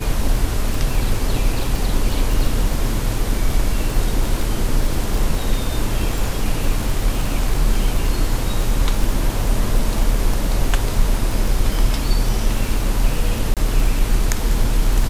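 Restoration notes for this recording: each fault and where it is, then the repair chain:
crackle 39/s -21 dBFS
13.54–13.57 gap 27 ms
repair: de-click; interpolate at 13.54, 27 ms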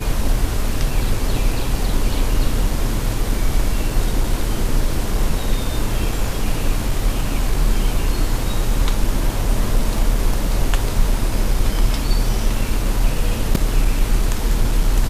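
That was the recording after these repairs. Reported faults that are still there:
none

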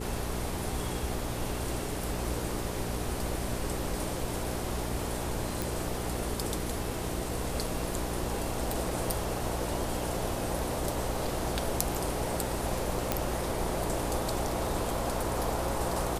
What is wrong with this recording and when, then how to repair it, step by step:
hum 60 Hz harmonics 7 -37 dBFS
5.62 pop
13.12 pop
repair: de-click; de-hum 60 Hz, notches 7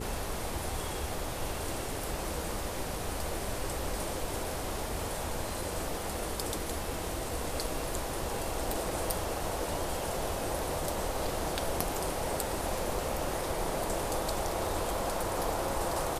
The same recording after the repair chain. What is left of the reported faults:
none

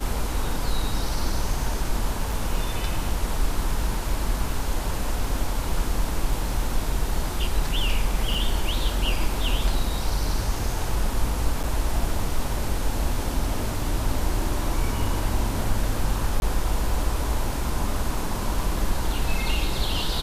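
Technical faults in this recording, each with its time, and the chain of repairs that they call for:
2.32 gap 2.5 ms
8.34 gap 3 ms
11.63–11.64 gap 7.4 ms
16.4–16.42 gap 21 ms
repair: interpolate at 2.32, 2.5 ms; interpolate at 8.34, 3 ms; interpolate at 11.63, 7.4 ms; interpolate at 16.4, 21 ms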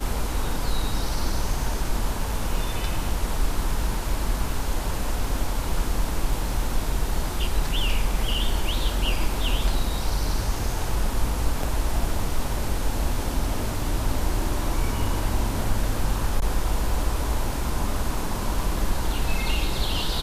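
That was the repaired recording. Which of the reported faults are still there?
none

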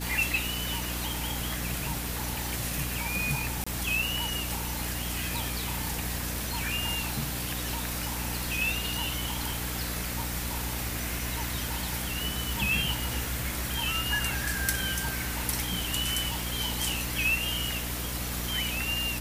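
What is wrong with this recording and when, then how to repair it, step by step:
crackle 49/s -38 dBFS
hum 60 Hz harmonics 5 -36 dBFS
3.64–3.67 gap 25 ms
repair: de-click; de-hum 60 Hz, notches 5; interpolate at 3.64, 25 ms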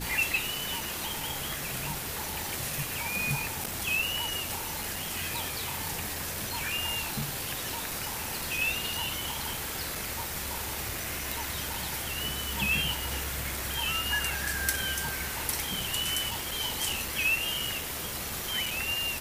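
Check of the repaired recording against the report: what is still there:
none

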